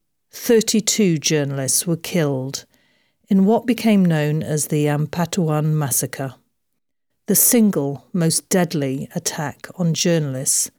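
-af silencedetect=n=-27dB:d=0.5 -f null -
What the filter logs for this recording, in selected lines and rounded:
silence_start: 2.60
silence_end: 3.31 | silence_duration: 0.71
silence_start: 6.30
silence_end: 7.28 | silence_duration: 0.99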